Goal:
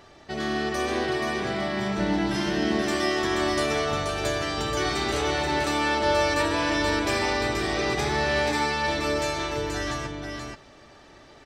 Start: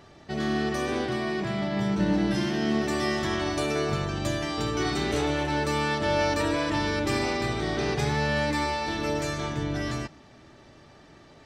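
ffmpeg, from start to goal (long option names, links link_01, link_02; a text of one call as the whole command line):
ffmpeg -i in.wav -filter_complex "[0:a]equalizer=frequency=150:width_type=o:width=1.8:gain=-8,asplit=2[link_01][link_02];[link_02]aecho=0:1:480:0.596[link_03];[link_01][link_03]amix=inputs=2:normalize=0,volume=2.5dB" out.wav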